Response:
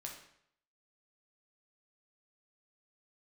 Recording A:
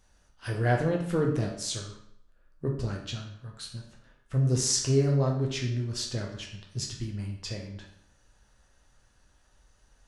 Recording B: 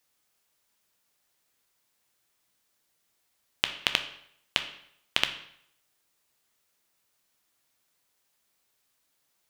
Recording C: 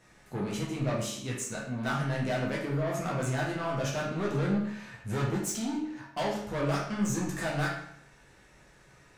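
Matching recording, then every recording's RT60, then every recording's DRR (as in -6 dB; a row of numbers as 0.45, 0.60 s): A; 0.70, 0.70, 0.70 s; -0.5, 6.5, -5.0 dB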